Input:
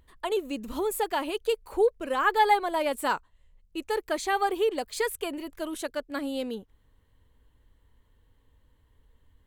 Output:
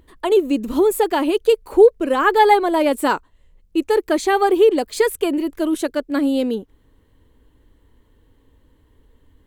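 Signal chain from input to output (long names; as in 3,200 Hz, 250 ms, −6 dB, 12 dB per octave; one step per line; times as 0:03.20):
parametric band 320 Hz +9.5 dB 1.2 octaves
level +6.5 dB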